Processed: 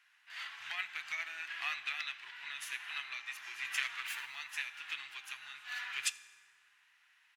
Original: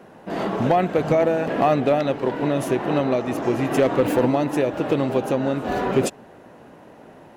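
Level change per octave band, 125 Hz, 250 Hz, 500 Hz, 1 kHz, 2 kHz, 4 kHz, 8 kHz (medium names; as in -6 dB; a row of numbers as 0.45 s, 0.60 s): under -40 dB, under -40 dB, under -40 dB, -25.0 dB, -5.0 dB, -3.5 dB, -5.5 dB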